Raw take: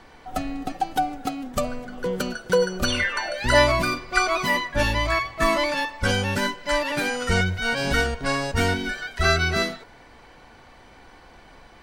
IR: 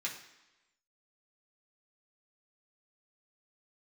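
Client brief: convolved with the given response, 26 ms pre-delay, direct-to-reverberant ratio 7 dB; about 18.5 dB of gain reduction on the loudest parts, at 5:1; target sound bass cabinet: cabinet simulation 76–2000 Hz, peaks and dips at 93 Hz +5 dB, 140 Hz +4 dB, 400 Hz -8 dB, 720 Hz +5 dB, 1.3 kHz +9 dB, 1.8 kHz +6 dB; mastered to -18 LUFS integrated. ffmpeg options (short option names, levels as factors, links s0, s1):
-filter_complex "[0:a]acompressor=threshold=0.02:ratio=5,asplit=2[s0][s1];[1:a]atrim=start_sample=2205,adelay=26[s2];[s1][s2]afir=irnorm=-1:irlink=0,volume=0.335[s3];[s0][s3]amix=inputs=2:normalize=0,highpass=f=76:w=0.5412,highpass=f=76:w=1.3066,equalizer=f=93:t=q:w=4:g=5,equalizer=f=140:t=q:w=4:g=4,equalizer=f=400:t=q:w=4:g=-8,equalizer=f=720:t=q:w=4:g=5,equalizer=f=1300:t=q:w=4:g=9,equalizer=f=1800:t=q:w=4:g=6,lowpass=f=2000:w=0.5412,lowpass=f=2000:w=1.3066,volume=5.96"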